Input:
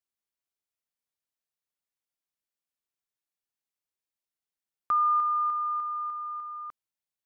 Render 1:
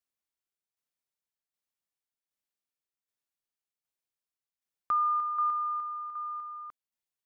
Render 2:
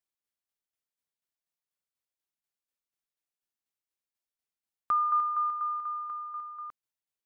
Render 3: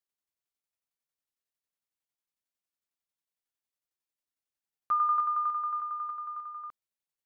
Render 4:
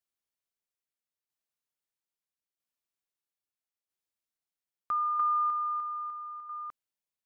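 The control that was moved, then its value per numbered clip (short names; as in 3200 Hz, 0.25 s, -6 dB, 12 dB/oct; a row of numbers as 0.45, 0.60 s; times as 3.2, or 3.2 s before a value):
tremolo, rate: 1.3, 4.1, 11, 0.77 Hz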